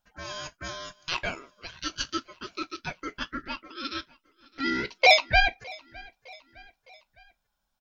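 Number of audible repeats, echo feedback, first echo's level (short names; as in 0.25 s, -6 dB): 2, 51%, -24.0 dB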